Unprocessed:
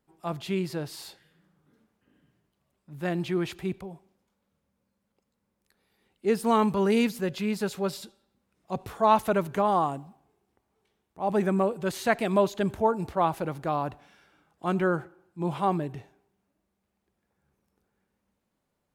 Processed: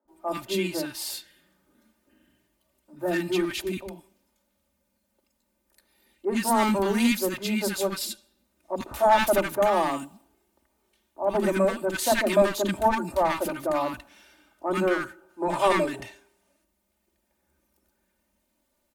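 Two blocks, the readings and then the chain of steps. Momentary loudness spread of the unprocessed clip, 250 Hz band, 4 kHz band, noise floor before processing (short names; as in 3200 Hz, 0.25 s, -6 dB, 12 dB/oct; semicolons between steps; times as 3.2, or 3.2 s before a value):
14 LU, +1.0 dB, +7.0 dB, -79 dBFS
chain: bell 96 Hz -13 dB 0.34 oct; comb 3.3 ms, depth 82%; spectral gain 15.22–16.56, 370–11000 Hz +6 dB; high shelf 7700 Hz +9 dB; one-sided clip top -21 dBFS; three bands offset in time mids, lows, highs 50/80 ms, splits 300/1200 Hz; gain +3.5 dB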